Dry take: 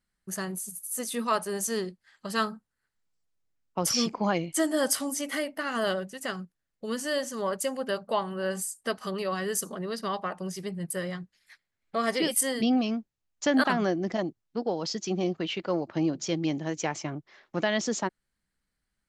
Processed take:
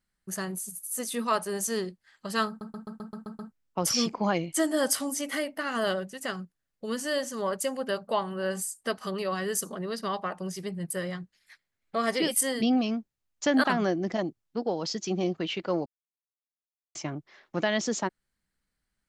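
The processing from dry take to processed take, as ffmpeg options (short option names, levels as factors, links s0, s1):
-filter_complex "[0:a]asplit=11[s0][s1][s2][s3][s4][s5][s6][s7][s8][s9][s10];[s0]atrim=end=2.612[s11];[s1]atrim=start=2.478:end=2.612[s12];[s2]atrim=start=2.478:end=2.612[s13];[s3]atrim=start=2.478:end=2.612[s14];[s4]atrim=start=2.478:end=2.612[s15];[s5]atrim=start=2.478:end=2.612[s16];[s6]atrim=start=2.478:end=2.612[s17];[s7]atrim=start=2.478:end=2.612[s18];[s8]atrim=start=3.518:end=15.86,asetpts=PTS-STARTPTS,afade=t=out:st=12.338:d=0.004:c=hsin[s19];[s9]atrim=start=15.86:end=16.95,asetpts=PTS-STARTPTS,volume=0[s20];[s10]atrim=start=16.95,asetpts=PTS-STARTPTS,afade=t=in:d=0.004:c=hsin[s21];[s11][s12]acrossfade=d=0.004:c1=hsin:c2=hsin[s22];[s22][s13]acrossfade=d=0.004:c1=hsin:c2=hsin[s23];[s23][s14]acrossfade=d=0.004:c1=hsin:c2=hsin[s24];[s24][s15]acrossfade=d=0.004:c1=hsin:c2=hsin[s25];[s25][s16]acrossfade=d=0.004:c1=hsin:c2=hsin[s26];[s26][s17]acrossfade=d=0.004:c1=hsin:c2=hsin[s27];[s27][s18]acrossfade=d=0.004:c1=hsin:c2=hsin[s28];[s19][s20][s21]concat=n=3:v=0:a=1[s29];[s28][s29]acrossfade=d=0.004:c1=hsin:c2=hsin"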